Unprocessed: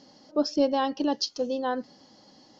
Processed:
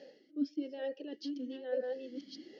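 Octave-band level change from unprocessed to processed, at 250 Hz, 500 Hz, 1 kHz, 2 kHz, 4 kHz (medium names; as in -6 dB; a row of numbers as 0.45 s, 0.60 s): -9.5 dB, -10.0 dB, -24.5 dB, -12.0 dB, -17.0 dB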